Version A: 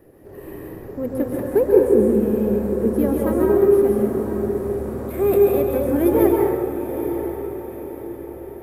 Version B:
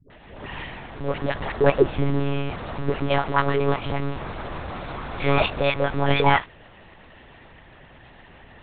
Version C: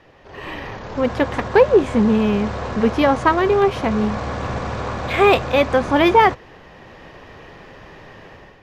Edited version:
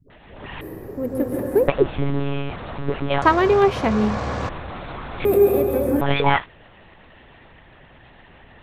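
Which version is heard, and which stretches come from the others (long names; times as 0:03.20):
B
0:00.61–0:01.68: punch in from A
0:03.22–0:04.49: punch in from C
0:05.25–0:06.01: punch in from A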